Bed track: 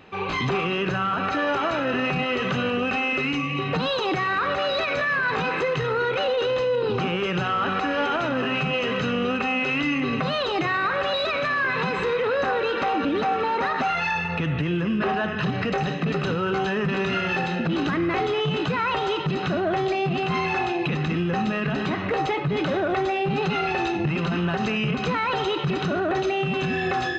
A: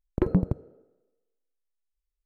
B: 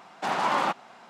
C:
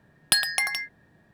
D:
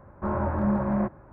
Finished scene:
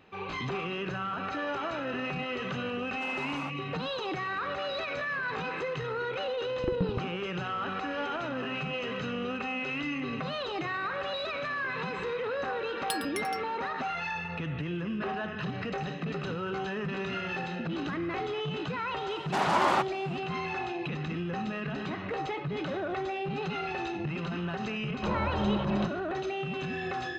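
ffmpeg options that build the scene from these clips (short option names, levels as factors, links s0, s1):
-filter_complex "[2:a]asplit=2[s0][s1];[0:a]volume=0.335[s2];[3:a]aecho=1:1:5.3:0.41[s3];[s0]atrim=end=1.09,asetpts=PTS-STARTPTS,volume=0.178,afade=t=in:d=0.004:c=hsin,afade=t=out:st=1.086:d=0.004:c=hsin,adelay=2780[s4];[1:a]atrim=end=2.25,asetpts=PTS-STARTPTS,volume=0.376,afade=t=in:d=0.004:c=hsin,afade=t=out:st=2.246:d=0.004:c=hsin,adelay=6460[s5];[s3]atrim=end=1.33,asetpts=PTS-STARTPTS,volume=0.211,afade=t=in:d=0.004:c=hsin,afade=t=out:st=1.326:d=0.004:c=hsin,adelay=12580[s6];[s1]atrim=end=1.09,asetpts=PTS-STARTPTS,volume=0.944,afade=t=in:d=0.004:c=hsin,afade=t=out:st=1.086:d=0.004:c=hsin,adelay=19100[s7];[4:a]atrim=end=1.32,asetpts=PTS-STARTPTS,volume=0.596,afade=t=in:d=0.004:c=hsin,afade=t=out:st=1.316:d=0.004:c=hsin,adelay=24800[s8];[s2][s4][s5][s6][s7][s8]amix=inputs=6:normalize=0"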